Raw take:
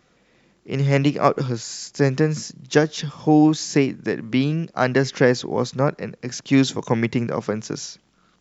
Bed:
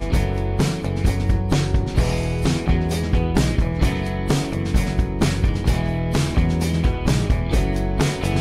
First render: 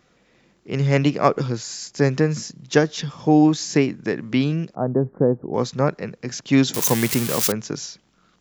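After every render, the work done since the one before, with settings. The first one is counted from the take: 4.75–5.54 Gaussian blur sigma 10 samples; 6.74–7.52 switching spikes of -11 dBFS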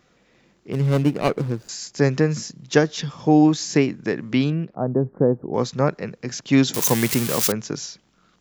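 0.72–1.69 median filter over 41 samples; 4.5–5.17 air absorption 340 m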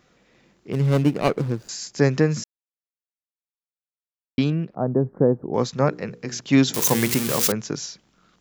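2.44–4.38 mute; 5.72–7.54 notches 60/120/180/240/300/360/420/480 Hz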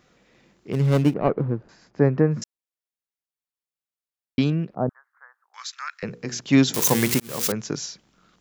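1.14–2.42 LPF 1300 Hz; 4.89–6.03 steep high-pass 1300 Hz; 7.2–7.78 fade in equal-power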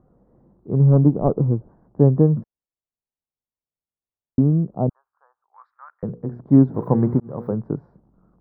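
inverse Chebyshev low-pass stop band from 2600 Hz, stop band 50 dB; low shelf 190 Hz +10 dB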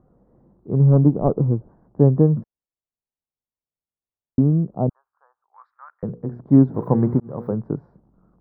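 nothing audible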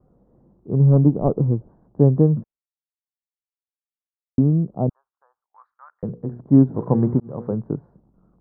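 gate with hold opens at -51 dBFS; LPF 1200 Hz 6 dB/oct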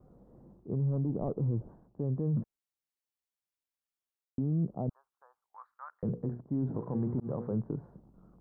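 reverse; compressor 5:1, threshold -24 dBFS, peak gain reduction 15 dB; reverse; limiter -24 dBFS, peak gain reduction 10 dB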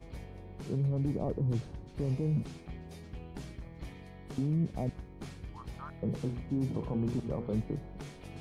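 add bed -25.5 dB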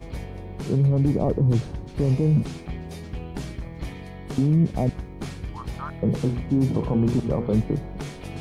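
gain +11 dB

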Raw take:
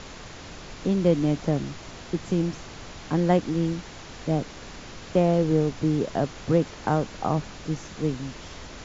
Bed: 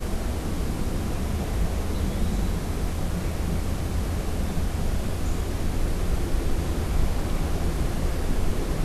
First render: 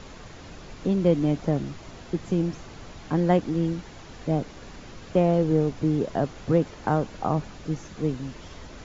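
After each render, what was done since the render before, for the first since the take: denoiser 6 dB, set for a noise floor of -42 dBFS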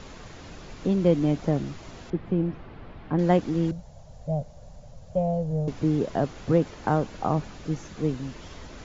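2.1–3.19 air absorption 420 m; 3.71–5.68 EQ curve 150 Hz 0 dB, 350 Hz -25 dB, 590 Hz +2 dB, 1200 Hz -18 dB, 2400 Hz -21 dB, 7700 Hz -7 dB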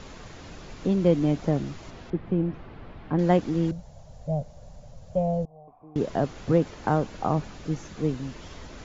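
1.9–2.54 air absorption 88 m; 5.45–5.96 vocal tract filter a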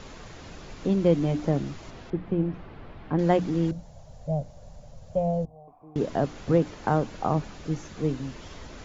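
notches 60/120/180/240/300 Hz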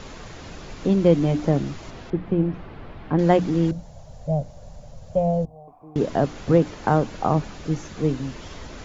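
gain +4.5 dB

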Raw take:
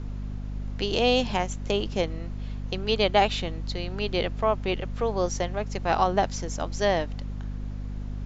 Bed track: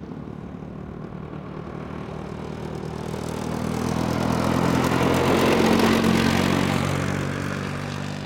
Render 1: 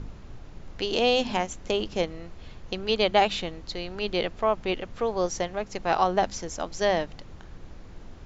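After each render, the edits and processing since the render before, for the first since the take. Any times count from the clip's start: de-hum 50 Hz, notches 5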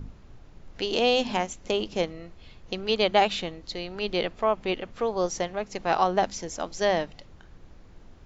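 noise print and reduce 6 dB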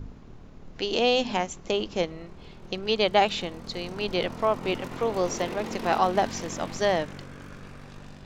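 add bed track -17 dB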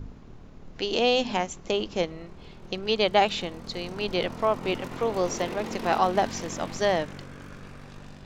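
nothing audible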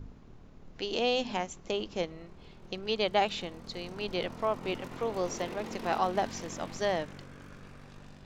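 gain -6 dB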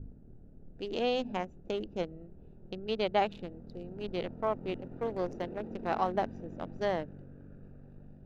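Wiener smoothing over 41 samples; high shelf 3000 Hz -9.5 dB

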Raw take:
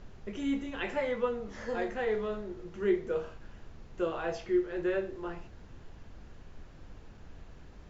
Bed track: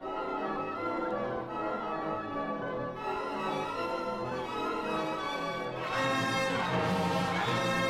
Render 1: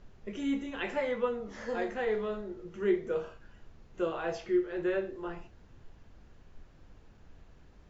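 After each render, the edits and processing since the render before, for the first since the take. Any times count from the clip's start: noise print and reduce 6 dB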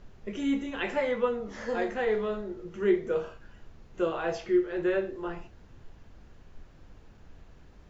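gain +3.5 dB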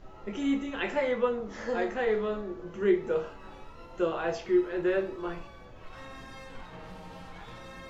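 add bed track -16.5 dB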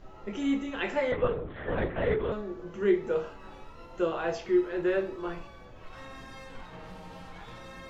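1.12–2.32 LPC vocoder at 8 kHz whisper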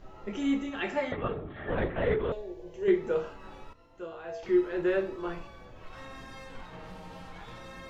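0.69–1.7 notch comb 500 Hz; 2.32–2.88 fixed phaser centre 540 Hz, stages 4; 3.73–4.43 resonator 95 Hz, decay 0.67 s, harmonics odd, mix 80%

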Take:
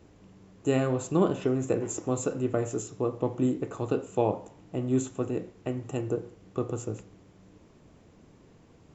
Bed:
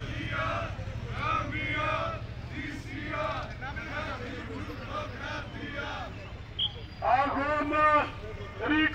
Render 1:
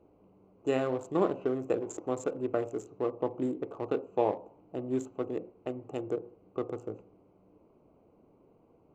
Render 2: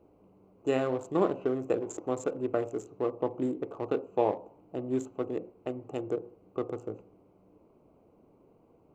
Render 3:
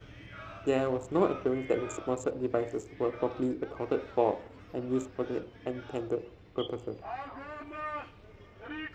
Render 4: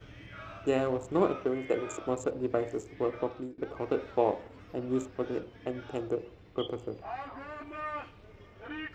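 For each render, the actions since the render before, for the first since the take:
Wiener smoothing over 25 samples; tone controls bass -13 dB, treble -8 dB
gain +1 dB
add bed -14.5 dB
1.34–2.02 low shelf 140 Hz -8 dB; 3.16–3.58 fade out, to -23.5 dB

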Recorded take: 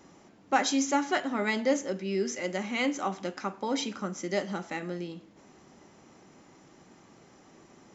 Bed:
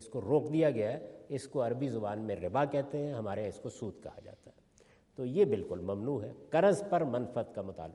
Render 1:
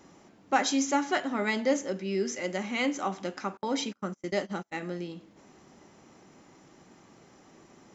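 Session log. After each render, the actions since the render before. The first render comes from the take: 3.57–4.79 gate -37 dBFS, range -33 dB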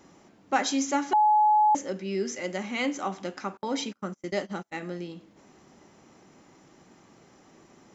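1.13–1.75 bleep 849 Hz -17 dBFS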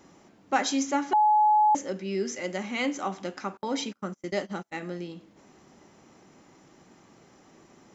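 0.83–1.4 high shelf 4500 Hz -6 dB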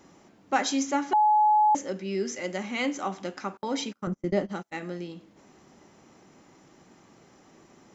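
4.07–4.49 tilt -3.5 dB/oct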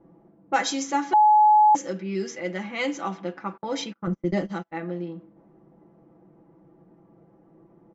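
low-pass opened by the level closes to 590 Hz, open at -23 dBFS; comb 6 ms, depth 75%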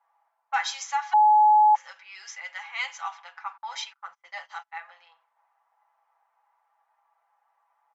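treble ducked by the level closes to 2400 Hz, closed at -16 dBFS; elliptic high-pass 850 Hz, stop band 60 dB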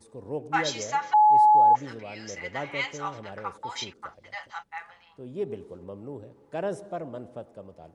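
add bed -4.5 dB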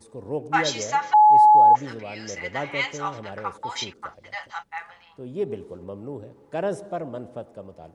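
gain +4 dB

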